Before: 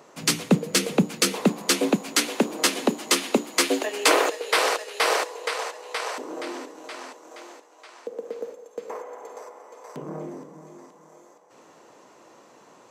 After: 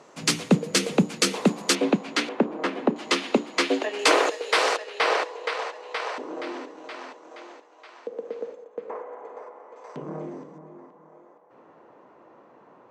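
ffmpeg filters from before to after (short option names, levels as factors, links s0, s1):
-af "asetnsamples=n=441:p=0,asendcmd='1.75 lowpass f 3600;2.29 lowpass f 1600;2.96 lowpass f 4100;3.99 lowpass f 6900;4.77 lowpass f 3900;8.64 lowpass f 2000;9.76 lowpass f 4200;10.58 lowpass f 1600',lowpass=8800"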